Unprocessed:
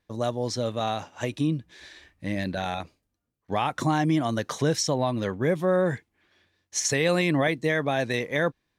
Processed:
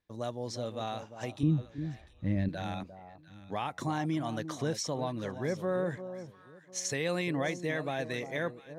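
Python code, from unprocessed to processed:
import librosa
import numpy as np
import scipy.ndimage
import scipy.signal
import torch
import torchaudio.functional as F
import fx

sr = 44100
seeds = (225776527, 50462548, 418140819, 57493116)

y = fx.riaa(x, sr, side='playback', at=(1.43, 2.49))
y = fx.echo_alternate(y, sr, ms=350, hz=1000.0, feedback_pct=50, wet_db=-10)
y = F.gain(torch.from_numpy(y), -9.0).numpy()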